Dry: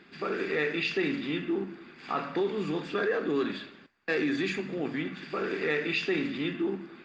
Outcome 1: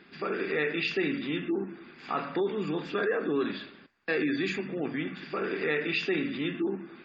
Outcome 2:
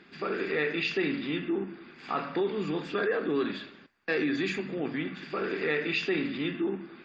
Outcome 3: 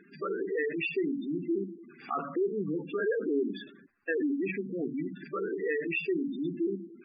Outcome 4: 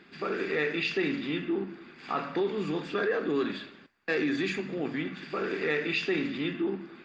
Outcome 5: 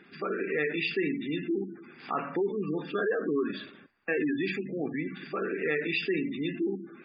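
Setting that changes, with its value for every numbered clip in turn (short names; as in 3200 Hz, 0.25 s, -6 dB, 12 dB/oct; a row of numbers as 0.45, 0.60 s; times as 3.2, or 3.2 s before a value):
spectral gate, under each frame's peak: -35, -45, -10, -60, -20 dB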